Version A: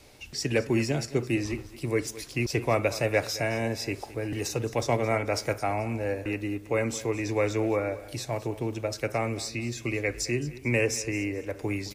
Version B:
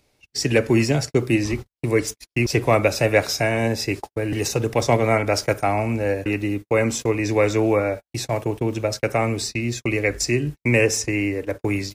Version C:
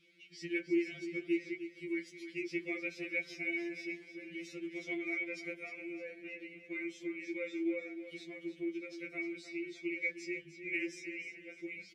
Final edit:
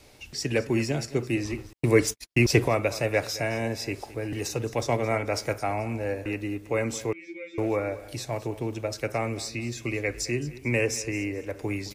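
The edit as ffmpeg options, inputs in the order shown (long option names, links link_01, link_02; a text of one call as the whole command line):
ffmpeg -i take0.wav -i take1.wav -i take2.wav -filter_complex "[0:a]asplit=3[link_01][link_02][link_03];[link_01]atrim=end=1.732[link_04];[1:a]atrim=start=1.728:end=2.682[link_05];[link_02]atrim=start=2.678:end=7.132[link_06];[2:a]atrim=start=7.128:end=7.582[link_07];[link_03]atrim=start=7.578[link_08];[link_04][link_05]acrossfade=duration=0.004:curve1=hsin:curve2=hsin[link_09];[link_09][link_06]acrossfade=duration=0.004:curve1=hsin:curve2=hsin[link_10];[link_10][link_07]acrossfade=duration=0.004:curve1=hsin:curve2=hsin[link_11];[link_11][link_08]acrossfade=duration=0.004:curve1=hsin:curve2=hsin" out.wav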